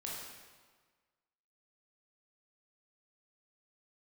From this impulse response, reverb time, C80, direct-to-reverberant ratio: 1.5 s, 2.0 dB, −4.5 dB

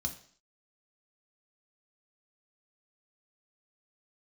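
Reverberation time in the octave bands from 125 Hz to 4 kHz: 0.45, 0.55, 0.55, 0.50, 0.50, 0.60 seconds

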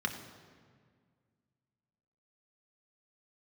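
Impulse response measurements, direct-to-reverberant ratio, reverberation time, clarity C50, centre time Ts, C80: 3.5 dB, 1.9 s, 8.5 dB, 24 ms, 9.5 dB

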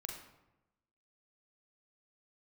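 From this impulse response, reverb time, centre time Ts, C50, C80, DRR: 0.95 s, 38 ms, 4.5 dB, 7.5 dB, 1.0 dB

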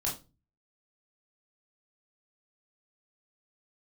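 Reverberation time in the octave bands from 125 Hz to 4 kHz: 0.60, 0.45, 0.30, 0.25, 0.25, 0.25 seconds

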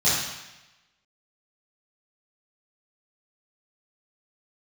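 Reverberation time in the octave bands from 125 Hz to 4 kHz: 1.0, 0.95, 0.95, 1.0, 1.1, 1.0 seconds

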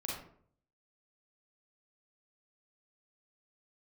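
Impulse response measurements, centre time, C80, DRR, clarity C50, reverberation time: 52 ms, 6.0 dB, −4.0 dB, 0.5 dB, 0.60 s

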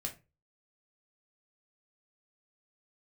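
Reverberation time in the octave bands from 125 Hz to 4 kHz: 0.40, 0.35, 0.30, 0.25, 0.25, 0.20 seconds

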